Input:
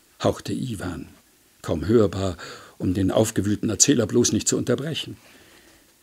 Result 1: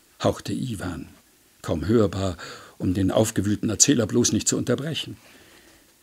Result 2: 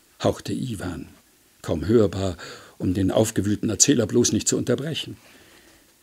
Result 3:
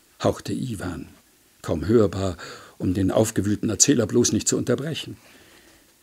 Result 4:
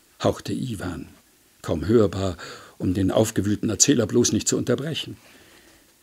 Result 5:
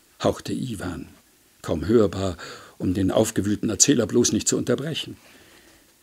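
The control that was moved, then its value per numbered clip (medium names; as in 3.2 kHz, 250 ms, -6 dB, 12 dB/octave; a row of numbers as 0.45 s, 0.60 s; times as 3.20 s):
dynamic bell, frequency: 390 Hz, 1.2 kHz, 3.2 kHz, 8.5 kHz, 110 Hz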